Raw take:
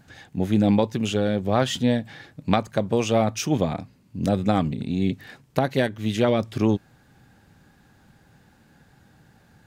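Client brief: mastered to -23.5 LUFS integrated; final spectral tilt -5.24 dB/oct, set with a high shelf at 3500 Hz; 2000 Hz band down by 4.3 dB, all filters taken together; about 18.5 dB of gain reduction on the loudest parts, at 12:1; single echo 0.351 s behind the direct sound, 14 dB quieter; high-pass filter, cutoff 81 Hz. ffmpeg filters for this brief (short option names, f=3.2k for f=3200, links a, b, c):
-af "highpass=81,equalizer=f=2k:t=o:g=-8,highshelf=f=3.5k:g=6.5,acompressor=threshold=-34dB:ratio=12,aecho=1:1:351:0.2,volume=16dB"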